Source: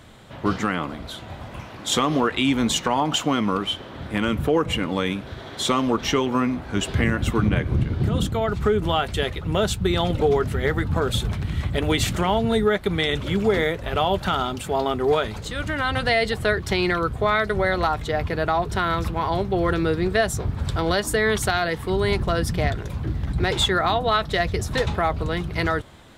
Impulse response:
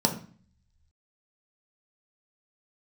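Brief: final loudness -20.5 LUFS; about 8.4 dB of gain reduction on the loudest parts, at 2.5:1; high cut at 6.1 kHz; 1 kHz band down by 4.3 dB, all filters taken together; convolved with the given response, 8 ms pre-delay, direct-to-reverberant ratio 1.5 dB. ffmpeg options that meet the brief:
-filter_complex "[0:a]lowpass=6100,equalizer=f=1000:t=o:g=-6,acompressor=threshold=0.0355:ratio=2.5,asplit=2[s0][s1];[1:a]atrim=start_sample=2205,adelay=8[s2];[s1][s2]afir=irnorm=-1:irlink=0,volume=0.224[s3];[s0][s3]amix=inputs=2:normalize=0,volume=1.78"

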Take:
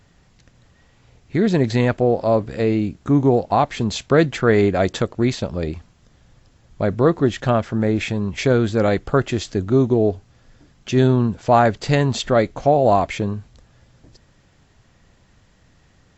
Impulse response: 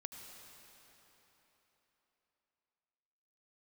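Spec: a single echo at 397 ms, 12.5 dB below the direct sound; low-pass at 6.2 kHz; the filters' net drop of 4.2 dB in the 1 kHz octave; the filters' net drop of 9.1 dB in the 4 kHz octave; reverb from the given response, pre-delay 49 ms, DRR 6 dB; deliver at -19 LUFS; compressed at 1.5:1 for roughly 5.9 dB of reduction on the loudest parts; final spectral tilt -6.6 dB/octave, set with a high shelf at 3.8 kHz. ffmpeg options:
-filter_complex "[0:a]lowpass=6200,equalizer=f=1000:t=o:g=-6,highshelf=f=3800:g=-5.5,equalizer=f=4000:t=o:g=-7,acompressor=threshold=0.0398:ratio=1.5,aecho=1:1:397:0.237,asplit=2[s0][s1];[1:a]atrim=start_sample=2205,adelay=49[s2];[s1][s2]afir=irnorm=-1:irlink=0,volume=0.75[s3];[s0][s3]amix=inputs=2:normalize=0,volume=1.78"

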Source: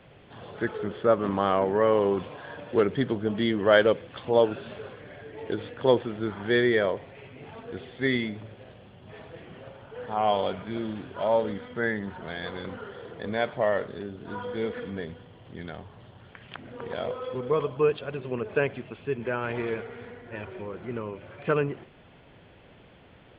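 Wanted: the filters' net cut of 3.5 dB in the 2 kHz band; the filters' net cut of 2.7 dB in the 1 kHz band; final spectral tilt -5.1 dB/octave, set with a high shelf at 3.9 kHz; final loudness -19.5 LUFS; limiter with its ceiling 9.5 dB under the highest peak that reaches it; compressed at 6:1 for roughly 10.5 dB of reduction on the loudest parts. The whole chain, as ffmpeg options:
-af "equalizer=f=1000:t=o:g=-3,equalizer=f=2000:t=o:g=-5,highshelf=f=3900:g=7.5,acompressor=threshold=0.0447:ratio=6,volume=8.41,alimiter=limit=0.422:level=0:latency=1"

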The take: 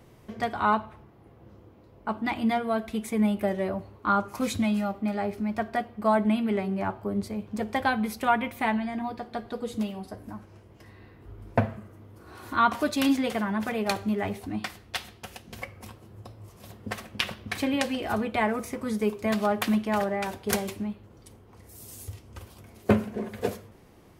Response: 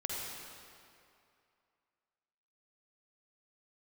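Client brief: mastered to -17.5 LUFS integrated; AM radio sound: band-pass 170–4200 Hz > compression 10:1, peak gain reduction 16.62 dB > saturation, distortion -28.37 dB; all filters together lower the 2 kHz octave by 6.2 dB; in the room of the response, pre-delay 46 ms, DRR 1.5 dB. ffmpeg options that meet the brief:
-filter_complex "[0:a]equalizer=f=2000:t=o:g=-8.5,asplit=2[s0][s1];[1:a]atrim=start_sample=2205,adelay=46[s2];[s1][s2]afir=irnorm=-1:irlink=0,volume=0.596[s3];[s0][s3]amix=inputs=2:normalize=0,highpass=170,lowpass=4200,acompressor=threshold=0.0224:ratio=10,asoftclip=threshold=0.075,volume=11.2"

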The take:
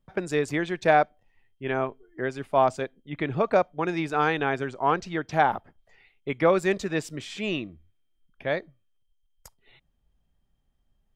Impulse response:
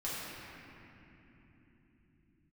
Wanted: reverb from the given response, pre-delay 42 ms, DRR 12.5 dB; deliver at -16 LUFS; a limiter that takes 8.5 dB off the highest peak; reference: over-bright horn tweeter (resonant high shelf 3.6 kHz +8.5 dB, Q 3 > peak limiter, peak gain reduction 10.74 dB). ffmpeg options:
-filter_complex "[0:a]alimiter=limit=0.168:level=0:latency=1,asplit=2[s0][s1];[1:a]atrim=start_sample=2205,adelay=42[s2];[s1][s2]afir=irnorm=-1:irlink=0,volume=0.141[s3];[s0][s3]amix=inputs=2:normalize=0,highshelf=f=3600:t=q:w=3:g=8.5,volume=10.6,alimiter=limit=0.562:level=0:latency=1"

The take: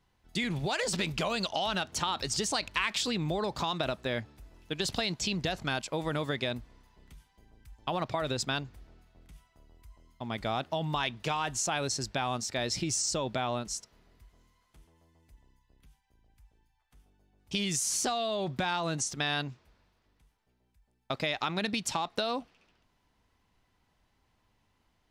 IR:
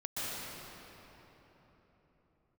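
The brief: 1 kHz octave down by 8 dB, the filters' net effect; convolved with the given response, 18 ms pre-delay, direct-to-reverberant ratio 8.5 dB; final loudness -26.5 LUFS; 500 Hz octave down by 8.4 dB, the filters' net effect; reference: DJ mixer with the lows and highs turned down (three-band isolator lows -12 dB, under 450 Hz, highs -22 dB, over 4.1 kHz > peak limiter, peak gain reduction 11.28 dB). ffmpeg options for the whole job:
-filter_complex "[0:a]equalizer=f=500:t=o:g=-4.5,equalizer=f=1000:t=o:g=-8.5,asplit=2[s0][s1];[1:a]atrim=start_sample=2205,adelay=18[s2];[s1][s2]afir=irnorm=-1:irlink=0,volume=0.211[s3];[s0][s3]amix=inputs=2:normalize=0,acrossover=split=450 4100:gain=0.251 1 0.0794[s4][s5][s6];[s4][s5][s6]amix=inputs=3:normalize=0,volume=4.73,alimiter=limit=0.2:level=0:latency=1"

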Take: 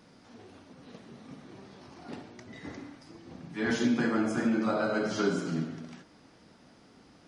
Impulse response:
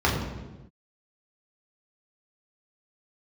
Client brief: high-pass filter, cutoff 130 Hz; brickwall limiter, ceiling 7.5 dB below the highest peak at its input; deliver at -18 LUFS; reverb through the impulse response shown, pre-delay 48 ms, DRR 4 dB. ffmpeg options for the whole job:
-filter_complex "[0:a]highpass=130,alimiter=limit=0.0668:level=0:latency=1,asplit=2[s0][s1];[1:a]atrim=start_sample=2205,adelay=48[s2];[s1][s2]afir=irnorm=-1:irlink=0,volume=0.0944[s3];[s0][s3]amix=inputs=2:normalize=0,volume=4.47"

